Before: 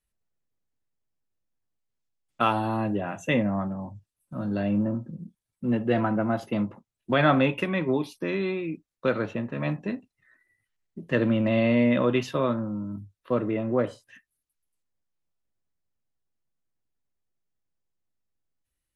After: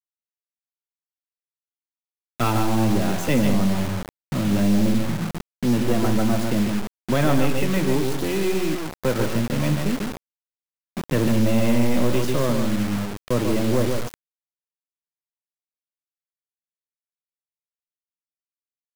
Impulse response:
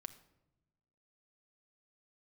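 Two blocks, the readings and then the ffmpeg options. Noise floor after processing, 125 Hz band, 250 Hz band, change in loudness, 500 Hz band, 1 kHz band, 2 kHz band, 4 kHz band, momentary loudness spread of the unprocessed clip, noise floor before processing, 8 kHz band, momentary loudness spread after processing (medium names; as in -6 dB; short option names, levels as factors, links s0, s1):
under -85 dBFS, +7.0 dB, +5.0 dB, +3.5 dB, +2.5 dB, +1.0 dB, +1.0 dB, +7.5 dB, 13 LU, -85 dBFS, no reading, 9 LU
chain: -filter_complex "[0:a]highshelf=f=3300:g=9,asplit=2[s0][s1];[s1]acompressor=threshold=0.0158:ratio=5,volume=1.33[s2];[s0][s2]amix=inputs=2:normalize=0,acrusher=bits=6:mode=log:mix=0:aa=0.000001,aeval=exprs='0.473*(cos(1*acos(clip(val(0)/0.473,-1,1)))-cos(1*PI/2))+0.106*(cos(2*acos(clip(val(0)/0.473,-1,1)))-cos(2*PI/2))+0.00596*(cos(4*acos(clip(val(0)/0.473,-1,1)))-cos(4*PI/2))+0.0422*(cos(6*acos(clip(val(0)/0.473,-1,1)))-cos(6*PI/2))+0.00299*(cos(7*acos(clip(val(0)/0.473,-1,1)))-cos(7*PI/2))':c=same,tiltshelf=f=660:g=5.5,asplit=2[s3][s4];[1:a]atrim=start_sample=2205,adelay=144[s5];[s4][s5]afir=irnorm=-1:irlink=0,volume=0.841[s6];[s3][s6]amix=inputs=2:normalize=0,dynaudnorm=f=700:g=5:m=1.5,acrusher=bits=4:mix=0:aa=0.000001,asoftclip=type=tanh:threshold=0.282"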